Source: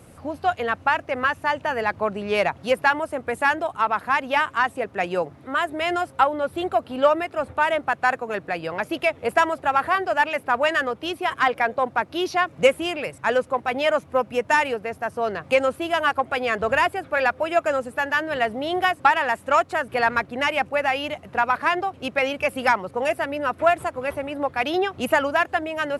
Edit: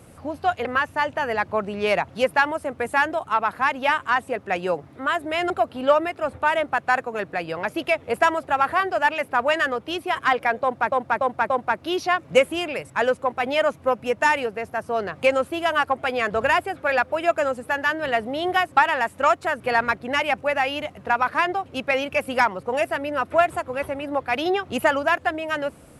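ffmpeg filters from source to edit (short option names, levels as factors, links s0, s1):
-filter_complex "[0:a]asplit=6[s0][s1][s2][s3][s4][s5];[s0]atrim=end=0.652[s6];[s1]atrim=start=1.128:end=5.982[s7];[s2]atrim=start=6.648:end=12.072[s8];[s3]atrim=start=11.778:end=12.072[s9];[s4]atrim=start=11.778:end=12.072[s10];[s5]atrim=start=11.778[s11];[s6][s7]acrossfade=d=0.004:c1=hsin:c2=hsin[s12];[s12][s8]acrossfade=d=0.004:c1=hsin:c2=hsin[s13];[s13][s9]acrossfade=d=0.004:c1=hsin:c2=hsin[s14];[s14][s10]acrossfade=d=0.004:c1=hsin:c2=hsin[s15];[s15][s11]acrossfade=d=0.004:c1=hsin:c2=hsin"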